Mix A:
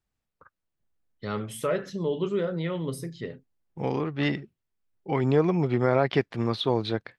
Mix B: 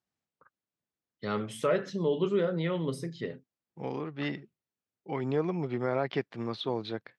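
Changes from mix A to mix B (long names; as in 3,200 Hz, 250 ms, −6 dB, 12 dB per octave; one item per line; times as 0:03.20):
second voice −7.0 dB
master: add band-pass filter 130–7,200 Hz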